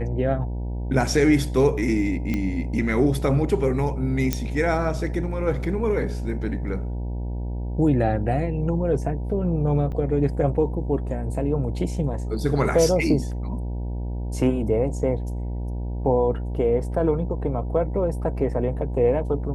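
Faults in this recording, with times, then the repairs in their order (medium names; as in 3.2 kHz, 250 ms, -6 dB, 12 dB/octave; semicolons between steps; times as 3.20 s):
buzz 60 Hz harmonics 16 -28 dBFS
2.34 s: pop -14 dBFS
4.33 s: pop -8 dBFS
9.92–9.93 s: dropout 5.9 ms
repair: de-click; de-hum 60 Hz, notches 16; interpolate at 9.92 s, 5.9 ms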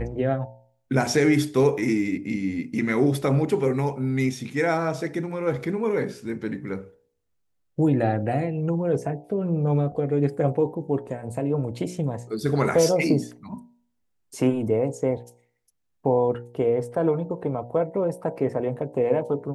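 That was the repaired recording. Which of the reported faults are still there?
nothing left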